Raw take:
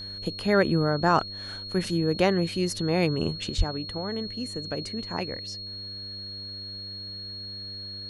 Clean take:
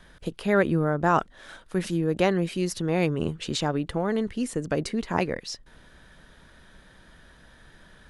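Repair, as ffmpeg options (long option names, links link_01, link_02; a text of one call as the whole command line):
ffmpeg -i in.wav -filter_complex "[0:a]bandreject=frequency=99.4:width_type=h:width=4,bandreject=frequency=198.8:width_type=h:width=4,bandreject=frequency=298.2:width_type=h:width=4,bandreject=frequency=397.6:width_type=h:width=4,bandreject=frequency=497:width_type=h:width=4,bandreject=frequency=596.4:width_type=h:width=4,bandreject=frequency=4300:width=30,asplit=3[link_01][link_02][link_03];[link_01]afade=type=out:start_time=3.57:duration=0.02[link_04];[link_02]highpass=frequency=140:width=0.5412,highpass=frequency=140:width=1.3066,afade=type=in:start_time=3.57:duration=0.02,afade=type=out:start_time=3.69:duration=0.02[link_05];[link_03]afade=type=in:start_time=3.69:duration=0.02[link_06];[link_04][link_05][link_06]amix=inputs=3:normalize=0,asetnsamples=nb_out_samples=441:pad=0,asendcmd='3.5 volume volume 6.5dB',volume=0dB" out.wav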